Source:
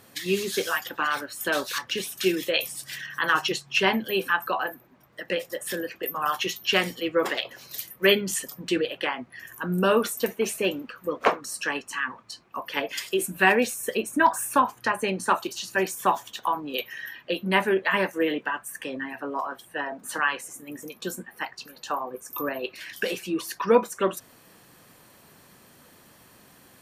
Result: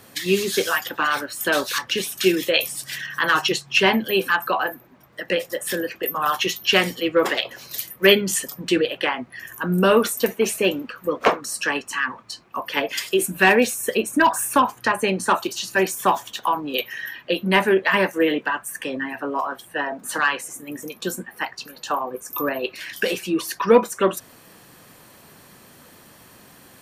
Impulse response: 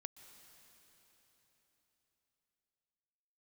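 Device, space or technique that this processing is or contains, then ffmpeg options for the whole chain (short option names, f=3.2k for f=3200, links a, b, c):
one-band saturation: -filter_complex "[0:a]acrossover=split=540|2200[a][b][c];[b]asoftclip=type=tanh:threshold=-17.5dB[d];[a][d][c]amix=inputs=3:normalize=0,volume=5.5dB"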